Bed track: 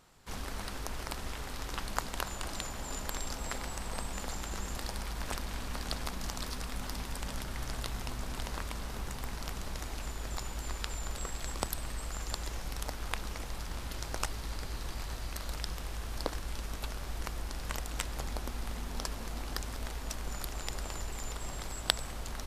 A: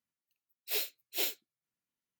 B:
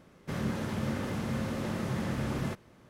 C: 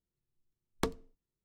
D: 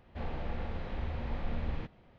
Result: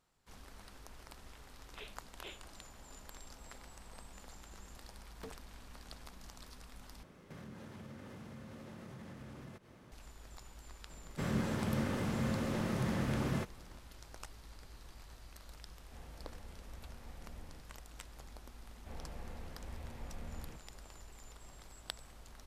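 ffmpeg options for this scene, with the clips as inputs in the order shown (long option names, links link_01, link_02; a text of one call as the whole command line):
ffmpeg -i bed.wav -i cue0.wav -i cue1.wav -i cue2.wav -i cue3.wav -filter_complex "[2:a]asplit=2[link_01][link_02];[4:a]asplit=2[link_03][link_04];[0:a]volume=-15dB[link_05];[1:a]aresample=8000,aresample=44100[link_06];[3:a]asoftclip=type=hard:threshold=-32dB[link_07];[link_01]acompressor=threshold=-48dB:ratio=5:attack=3.6:release=170:knee=1:detection=peak[link_08];[link_05]asplit=2[link_09][link_10];[link_09]atrim=end=7.034[link_11];[link_08]atrim=end=2.89,asetpts=PTS-STARTPTS,volume=-1dB[link_12];[link_10]atrim=start=9.916[link_13];[link_06]atrim=end=2.19,asetpts=PTS-STARTPTS,volume=-11.5dB,afade=type=in:duration=0.004:curve=hsin,afade=type=out:start_time=2.186:duration=0.004:curve=hsin,adelay=1060[link_14];[link_07]atrim=end=1.44,asetpts=PTS-STARTPTS,volume=-10.5dB,afade=type=in:duration=0.004:curve=hsin,afade=type=out:start_time=1.436:duration=0.004:curve=hsin,adelay=4400[link_15];[link_02]atrim=end=2.89,asetpts=PTS-STARTPTS,volume=-2dB,afade=type=in:duration=0.004:curve=hsin,afade=type=out:start_time=2.886:duration=0.004:curve=hsin,adelay=480690S[link_16];[link_03]atrim=end=2.18,asetpts=PTS-STARTPTS,volume=-17dB,afade=type=in:duration=0.004:curve=hsin,afade=type=out:start_time=2.176:duration=0.004:curve=hsin,adelay=15750[link_17];[link_04]atrim=end=2.18,asetpts=PTS-STARTPTS,volume=-11dB,afade=type=in:duration=0.004:curve=hsin,afade=type=out:start_time=2.176:duration=0.004:curve=hsin,adelay=18700[link_18];[link_11][link_12]acrossfade=duration=0.004:curve1=hsin:curve2=hsin[link_19];[link_19][link_13]acrossfade=duration=0.004:curve1=hsin:curve2=hsin[link_20];[link_20][link_14][link_15][link_16][link_17][link_18]amix=inputs=6:normalize=0" out.wav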